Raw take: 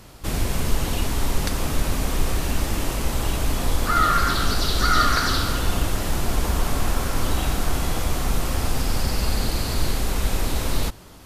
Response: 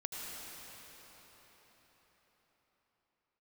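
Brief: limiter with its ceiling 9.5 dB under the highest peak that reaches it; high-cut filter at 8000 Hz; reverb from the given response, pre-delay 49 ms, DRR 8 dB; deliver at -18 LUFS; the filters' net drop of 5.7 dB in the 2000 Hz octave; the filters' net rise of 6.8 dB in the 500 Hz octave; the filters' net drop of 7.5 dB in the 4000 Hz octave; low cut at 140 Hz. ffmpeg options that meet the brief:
-filter_complex "[0:a]highpass=140,lowpass=8k,equalizer=f=500:t=o:g=9,equalizer=f=2k:t=o:g=-8,equalizer=f=4k:t=o:g=-7,alimiter=limit=-19dB:level=0:latency=1,asplit=2[a][b];[1:a]atrim=start_sample=2205,adelay=49[c];[b][c]afir=irnorm=-1:irlink=0,volume=-9.5dB[d];[a][d]amix=inputs=2:normalize=0,volume=10dB"

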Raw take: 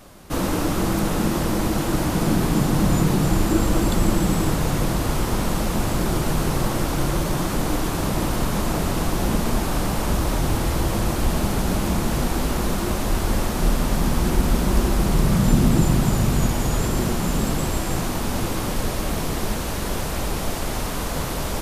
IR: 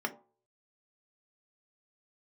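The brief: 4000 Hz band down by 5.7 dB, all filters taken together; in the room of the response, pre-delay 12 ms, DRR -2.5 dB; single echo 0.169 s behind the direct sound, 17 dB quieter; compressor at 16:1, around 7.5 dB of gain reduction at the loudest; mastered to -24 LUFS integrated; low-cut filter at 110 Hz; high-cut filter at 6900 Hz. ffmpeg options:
-filter_complex "[0:a]highpass=110,lowpass=6.9k,equalizer=f=4k:t=o:g=-7,acompressor=threshold=-22dB:ratio=16,aecho=1:1:169:0.141,asplit=2[a][b];[1:a]atrim=start_sample=2205,adelay=12[c];[b][c]afir=irnorm=-1:irlink=0,volume=-2.5dB[d];[a][d]amix=inputs=2:normalize=0,volume=-1dB"

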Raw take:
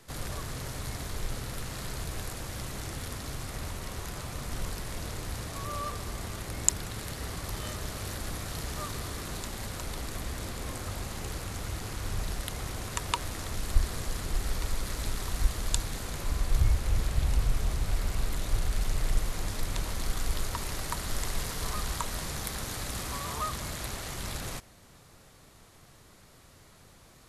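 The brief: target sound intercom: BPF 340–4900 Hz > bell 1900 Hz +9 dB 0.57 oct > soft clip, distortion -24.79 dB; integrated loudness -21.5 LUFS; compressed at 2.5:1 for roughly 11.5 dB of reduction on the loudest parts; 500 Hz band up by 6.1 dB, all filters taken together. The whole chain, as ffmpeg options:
-af "equalizer=f=500:t=o:g=8.5,acompressor=threshold=-35dB:ratio=2.5,highpass=340,lowpass=4.9k,equalizer=f=1.9k:t=o:w=0.57:g=9,asoftclip=threshold=-23.5dB,volume=19dB"

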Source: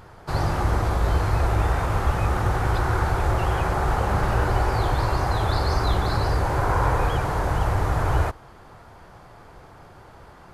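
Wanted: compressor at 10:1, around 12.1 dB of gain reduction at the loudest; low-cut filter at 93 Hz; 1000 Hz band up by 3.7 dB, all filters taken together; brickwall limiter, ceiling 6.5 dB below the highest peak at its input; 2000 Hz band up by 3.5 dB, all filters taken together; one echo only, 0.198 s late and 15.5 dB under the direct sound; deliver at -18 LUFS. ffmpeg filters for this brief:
-af "highpass=93,equalizer=f=1k:t=o:g=4,equalizer=f=2k:t=o:g=3,acompressor=threshold=-30dB:ratio=10,alimiter=level_in=1.5dB:limit=-24dB:level=0:latency=1,volume=-1.5dB,aecho=1:1:198:0.168,volume=18dB"

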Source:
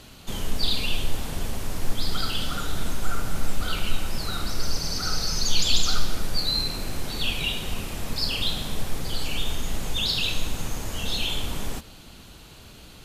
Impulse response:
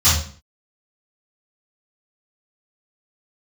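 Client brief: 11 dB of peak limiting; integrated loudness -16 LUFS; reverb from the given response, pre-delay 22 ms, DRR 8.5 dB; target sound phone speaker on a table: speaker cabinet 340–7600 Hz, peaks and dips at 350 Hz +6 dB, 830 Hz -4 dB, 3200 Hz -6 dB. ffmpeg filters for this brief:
-filter_complex "[0:a]alimiter=limit=-17.5dB:level=0:latency=1,asplit=2[a][b];[1:a]atrim=start_sample=2205,adelay=22[c];[b][c]afir=irnorm=-1:irlink=0,volume=-28.5dB[d];[a][d]amix=inputs=2:normalize=0,highpass=f=340:w=0.5412,highpass=f=340:w=1.3066,equalizer=f=350:t=q:w=4:g=6,equalizer=f=830:t=q:w=4:g=-4,equalizer=f=3.2k:t=q:w=4:g=-6,lowpass=f=7.6k:w=0.5412,lowpass=f=7.6k:w=1.3066,volume=16dB"

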